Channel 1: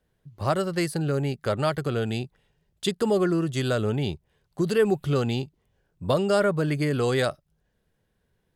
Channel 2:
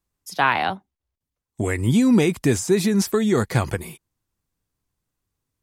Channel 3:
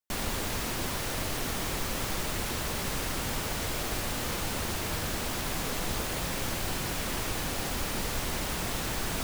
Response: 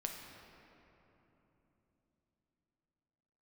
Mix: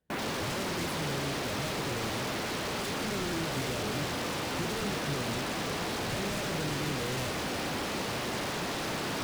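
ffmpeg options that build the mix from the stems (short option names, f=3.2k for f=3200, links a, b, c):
-filter_complex "[0:a]lowshelf=f=300:g=-10,volume=-8.5dB[a];[2:a]afwtdn=0.00891,highpass=350,volume=1.5dB,asplit=2[b][c];[c]volume=-8.5dB[d];[3:a]atrim=start_sample=2205[e];[d][e]afir=irnorm=-1:irlink=0[f];[a][b][f]amix=inputs=3:normalize=0,aeval=exprs='0.0282*(abs(mod(val(0)/0.0282+3,4)-2)-1)':c=same,equalizer=f=130:t=o:w=2.9:g=11"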